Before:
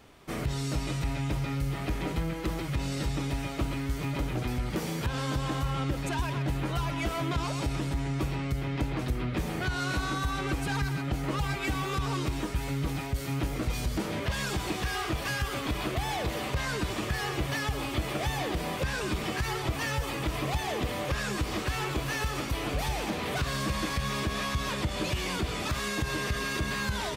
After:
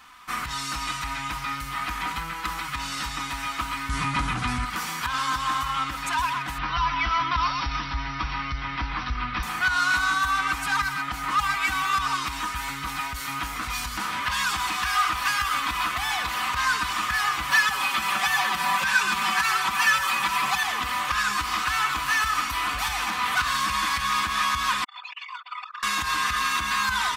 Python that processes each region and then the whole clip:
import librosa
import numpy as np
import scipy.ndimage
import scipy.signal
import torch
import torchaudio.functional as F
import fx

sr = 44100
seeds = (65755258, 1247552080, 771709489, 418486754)

y = fx.chain(x, sr, fx.steep_lowpass(hz=11000.0, slope=72),
    fx.peak_eq(hz=120.0, db=11.5, octaves=2.5),
    fx.env_flatten(amount_pct=50), at=(3.89, 4.65))
y = fx.chain(y, sr, fx.brickwall_lowpass(high_hz=6000.0),
    fx.low_shelf(hz=95.0, db=11.5), at=(6.58, 9.43))
y = fx.chain(y, sr, fx.highpass(hz=120.0, slope=12),
    fx.comb(ms=5.2, depth=0.93), at=(17.5, 20.63))
y = fx.chain(y, sr, fx.envelope_sharpen(power=3.0),
    fx.steep_highpass(hz=940.0, slope=36),
    fx.over_compress(threshold_db=-49.0, ratio=-1.0), at=(24.84, 25.83))
y = fx.low_shelf_res(y, sr, hz=760.0, db=-13.5, q=3.0)
y = y + 0.47 * np.pad(y, (int(4.0 * sr / 1000.0), 0))[:len(y)]
y = y * 10.0 ** (6.0 / 20.0)